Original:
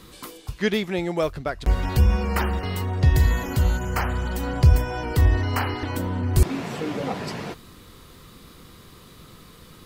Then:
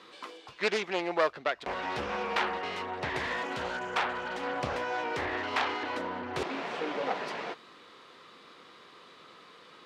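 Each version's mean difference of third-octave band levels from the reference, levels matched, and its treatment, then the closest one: 7.5 dB: self-modulated delay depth 0.58 ms; band-pass 490–3600 Hz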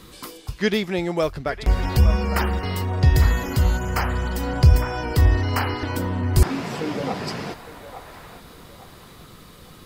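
1.0 dB: dynamic bell 5 kHz, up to +6 dB, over -58 dBFS, Q 6.2; feedback echo behind a band-pass 858 ms, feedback 36%, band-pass 1.1 kHz, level -9 dB; trim +1.5 dB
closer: second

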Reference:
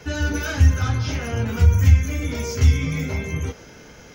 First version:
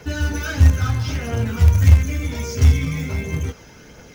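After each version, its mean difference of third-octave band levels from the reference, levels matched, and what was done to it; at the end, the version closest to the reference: 2.0 dB: phaser 1.5 Hz, delay 1.2 ms, feedback 30%; in parallel at -9 dB: companded quantiser 4-bit; on the sum: trim -3.5 dB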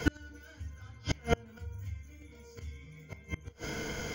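11.5 dB: rippled EQ curve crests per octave 1.8, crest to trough 9 dB; inverted gate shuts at -16 dBFS, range -33 dB; trim +4.5 dB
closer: first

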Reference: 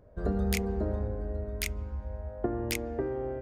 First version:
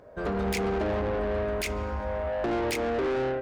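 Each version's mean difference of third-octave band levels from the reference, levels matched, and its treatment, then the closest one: 7.0 dB: level rider gain up to 9 dB; peak limiter -16 dBFS, peak gain reduction 10 dB; overdrive pedal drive 25 dB, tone 5.5 kHz, clips at -16 dBFS; trim -5.5 dB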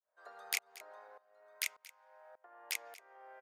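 14.5 dB: high-pass 850 Hz 24 dB/octave; tremolo saw up 1.7 Hz, depth 100%; delay 230 ms -19 dB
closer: first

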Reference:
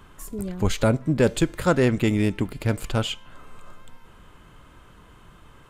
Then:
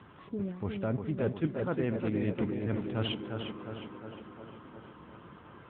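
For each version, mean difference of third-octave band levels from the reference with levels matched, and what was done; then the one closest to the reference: 10.5 dB: median filter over 9 samples; reverse; compression 6:1, threshold -29 dBFS, peak gain reduction 14.5 dB; reverse; tape echo 356 ms, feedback 74%, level -3 dB, low-pass 2.3 kHz; AMR-NB 10.2 kbps 8 kHz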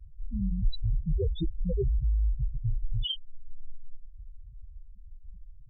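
20.5 dB: octave divider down 2 oct, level 0 dB; fifteen-band graphic EQ 250 Hz -4 dB, 630 Hz -4 dB, 1.6 kHz -5 dB, 4 kHz +10 dB; in parallel at +1.5 dB: compressor with a negative ratio -29 dBFS, ratio -1; on the sum: loudest bins only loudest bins 2; trim -3 dB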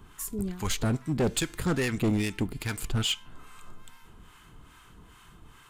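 4.5 dB: treble shelf 3.5 kHz +7 dB; harmonic tremolo 2.4 Hz, depth 70%, crossover 820 Hz; peaking EQ 560 Hz -12.5 dB 0.3 oct; hard clipper -21 dBFS, distortion -9 dB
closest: third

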